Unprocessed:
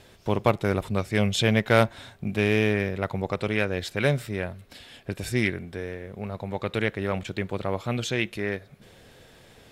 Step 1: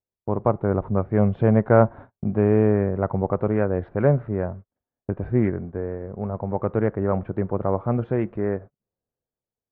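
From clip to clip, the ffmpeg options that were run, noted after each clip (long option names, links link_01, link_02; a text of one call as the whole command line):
ffmpeg -i in.wav -af "agate=range=-42dB:threshold=-40dB:ratio=16:detection=peak,lowpass=frequency=1200:width=0.5412,lowpass=frequency=1200:width=1.3066,dynaudnorm=framelen=140:gausssize=9:maxgain=5.5dB" out.wav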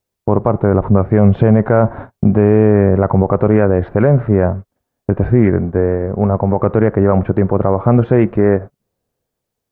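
ffmpeg -i in.wav -af "alimiter=level_in=15.5dB:limit=-1dB:release=50:level=0:latency=1,volume=-1dB" out.wav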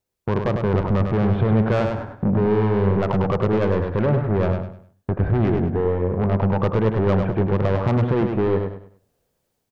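ffmpeg -i in.wav -af "dynaudnorm=framelen=160:gausssize=3:maxgain=7.5dB,asoftclip=type=tanh:threshold=-11.5dB,aecho=1:1:101|202|303|404:0.531|0.165|0.051|0.0158,volume=-4dB" out.wav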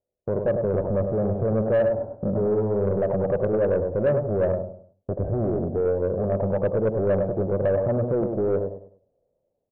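ffmpeg -i in.wav -af "lowpass=frequency=580:width_type=q:width=4.9,asoftclip=type=tanh:threshold=-7.5dB,volume=-7dB" out.wav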